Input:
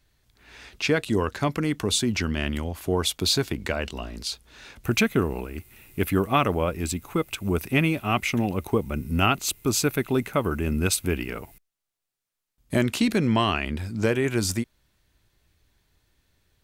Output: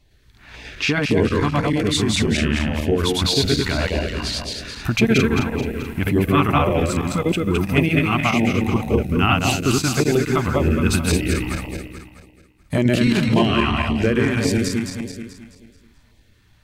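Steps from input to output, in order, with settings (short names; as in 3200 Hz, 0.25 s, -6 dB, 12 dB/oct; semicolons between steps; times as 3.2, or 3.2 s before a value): regenerating reverse delay 0.108 s, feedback 66%, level 0 dB; LPF 3500 Hz 6 dB/oct; in parallel at +3 dB: compressor, threshold -30 dBFS, peak gain reduction 16 dB; on the sum: LFO notch saw down 1.8 Hz 310–1600 Hz; gain +1 dB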